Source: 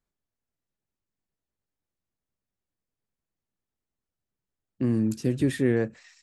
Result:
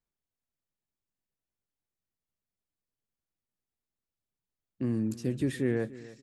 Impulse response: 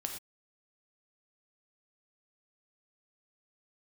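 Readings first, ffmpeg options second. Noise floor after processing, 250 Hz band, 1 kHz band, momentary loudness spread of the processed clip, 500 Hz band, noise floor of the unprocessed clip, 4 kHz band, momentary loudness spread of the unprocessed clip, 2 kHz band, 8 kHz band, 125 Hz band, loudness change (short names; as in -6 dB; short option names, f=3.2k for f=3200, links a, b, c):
under -85 dBFS, -5.5 dB, -5.5 dB, 5 LU, -5.5 dB, under -85 dBFS, -5.5 dB, 5 LU, -5.5 dB, -5.5 dB, -5.5 dB, -5.5 dB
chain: -af "aecho=1:1:291|582|873:0.126|0.0415|0.0137,volume=-5.5dB"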